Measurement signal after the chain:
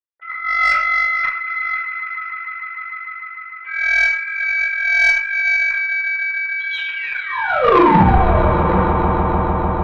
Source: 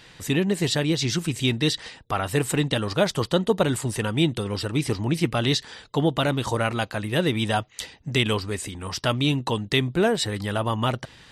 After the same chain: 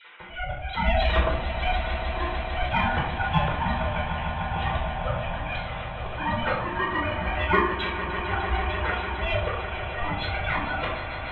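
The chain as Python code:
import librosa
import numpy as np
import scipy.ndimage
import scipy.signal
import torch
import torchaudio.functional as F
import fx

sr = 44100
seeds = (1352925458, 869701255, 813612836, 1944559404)

p1 = fx.sine_speech(x, sr)
p2 = fx.highpass(p1, sr, hz=870.0, slope=6)
p3 = fx.high_shelf(p2, sr, hz=2800.0, db=-9.5)
p4 = p3 + 0.74 * np.pad(p3, (int(7.2 * sr / 1000.0), 0))[:len(p3)]
p5 = fx.rider(p4, sr, range_db=4, speed_s=2.0)
p6 = p4 + (p5 * 10.0 ** (1.5 / 20.0))
p7 = fx.auto_swell(p6, sr, attack_ms=618.0)
p8 = p7 + fx.echo_swell(p7, sr, ms=150, loudest=5, wet_db=-13, dry=0)
p9 = p8 * np.sin(2.0 * np.pi * 350.0 * np.arange(len(p8)) / sr)
p10 = 10.0 ** (-9.0 / 20.0) * np.tanh(p9 / 10.0 ** (-9.0 / 20.0))
p11 = fx.room_shoebox(p10, sr, seeds[0], volume_m3=850.0, walls='furnished', distance_m=4.7)
p12 = fx.cheby_harmonics(p11, sr, harmonics=(4, 5), levels_db=(-18, -19), full_scale_db=3.0)
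y = p12 * 10.0 ** (-3.0 / 20.0)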